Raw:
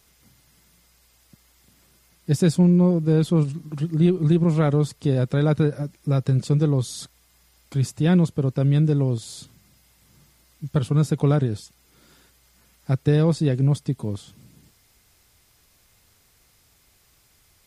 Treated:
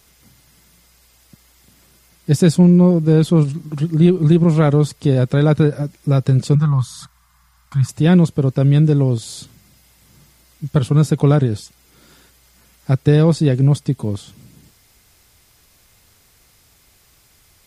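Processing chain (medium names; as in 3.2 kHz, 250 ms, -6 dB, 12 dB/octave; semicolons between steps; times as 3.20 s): 6.55–7.89 s: FFT filter 160 Hz 0 dB, 400 Hz -25 dB, 1.1 kHz +8 dB, 2.5 kHz -7 dB; trim +6 dB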